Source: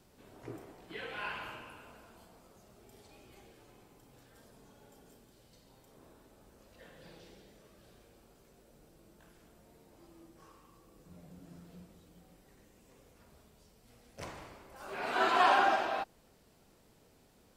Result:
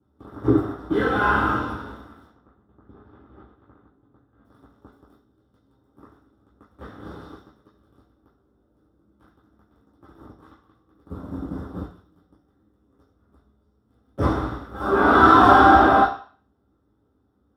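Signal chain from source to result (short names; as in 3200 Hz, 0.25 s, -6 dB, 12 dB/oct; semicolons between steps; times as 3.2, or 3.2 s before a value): sample leveller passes 5; 2.28–4.45 air absorption 410 m; reverb RT60 0.40 s, pre-delay 3 ms, DRR -7 dB; gain -17 dB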